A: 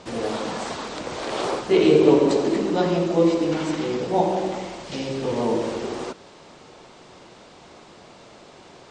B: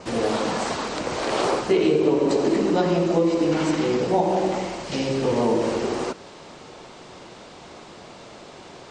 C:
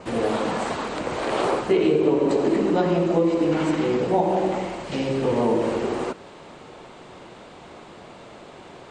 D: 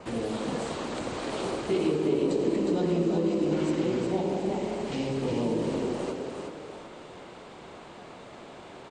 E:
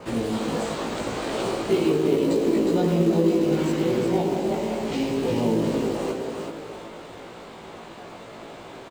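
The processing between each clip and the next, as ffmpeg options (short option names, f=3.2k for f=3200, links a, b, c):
-af "adynamicequalizer=threshold=0.00178:dfrequency=3500:dqfactor=6.1:tfrequency=3500:tqfactor=6.1:attack=5:release=100:ratio=0.375:range=2:mode=cutabove:tftype=bell,acompressor=threshold=-20dB:ratio=6,volume=4dB"
-af "equalizer=f=5.5k:t=o:w=0.88:g=-9.5"
-filter_complex "[0:a]acrossover=split=370|3000[a][b][c];[b]acompressor=threshold=-35dB:ratio=3[d];[a][d][c]amix=inputs=3:normalize=0,asplit=6[e][f][g][h][i][j];[f]adelay=361,afreqshift=31,volume=-4.5dB[k];[g]adelay=722,afreqshift=62,volume=-12.5dB[l];[h]adelay=1083,afreqshift=93,volume=-20.4dB[m];[i]adelay=1444,afreqshift=124,volume=-28.4dB[n];[j]adelay=1805,afreqshift=155,volume=-36.3dB[o];[e][k][l][m][n][o]amix=inputs=6:normalize=0,volume=-4dB"
-filter_complex "[0:a]asplit=2[a][b];[b]acrusher=bits=3:mode=log:mix=0:aa=0.000001,volume=-8dB[c];[a][c]amix=inputs=2:normalize=0,asplit=2[d][e];[e]adelay=18,volume=-2.5dB[f];[d][f]amix=inputs=2:normalize=0"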